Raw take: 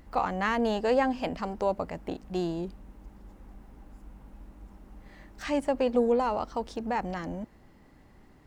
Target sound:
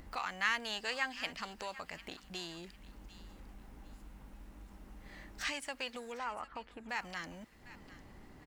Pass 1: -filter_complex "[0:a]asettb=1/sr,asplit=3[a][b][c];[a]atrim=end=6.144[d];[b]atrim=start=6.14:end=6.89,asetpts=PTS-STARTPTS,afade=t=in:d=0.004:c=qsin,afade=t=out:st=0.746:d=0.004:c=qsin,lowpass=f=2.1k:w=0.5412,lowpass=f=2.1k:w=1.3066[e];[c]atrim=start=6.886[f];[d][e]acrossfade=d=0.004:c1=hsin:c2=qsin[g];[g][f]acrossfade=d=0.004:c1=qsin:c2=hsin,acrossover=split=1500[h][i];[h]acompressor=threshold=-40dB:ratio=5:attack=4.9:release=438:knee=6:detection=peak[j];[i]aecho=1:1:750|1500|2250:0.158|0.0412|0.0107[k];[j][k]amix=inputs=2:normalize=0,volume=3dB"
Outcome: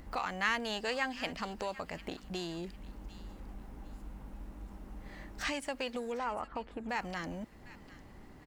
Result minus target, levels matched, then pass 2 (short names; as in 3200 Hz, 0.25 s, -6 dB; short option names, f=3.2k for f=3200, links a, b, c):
compressor: peak gain reduction -9 dB
-filter_complex "[0:a]asettb=1/sr,asplit=3[a][b][c];[a]atrim=end=6.144[d];[b]atrim=start=6.14:end=6.89,asetpts=PTS-STARTPTS,afade=t=in:d=0.004:c=qsin,afade=t=out:st=0.746:d=0.004:c=qsin,lowpass=f=2.1k:w=0.5412,lowpass=f=2.1k:w=1.3066[e];[c]atrim=start=6.886[f];[d][e]acrossfade=d=0.004:c1=hsin:c2=qsin[g];[g][f]acrossfade=d=0.004:c1=qsin:c2=hsin,acrossover=split=1500[h][i];[h]acompressor=threshold=-51dB:ratio=5:attack=4.9:release=438:knee=6:detection=peak[j];[i]aecho=1:1:750|1500|2250:0.158|0.0412|0.0107[k];[j][k]amix=inputs=2:normalize=0,volume=3dB"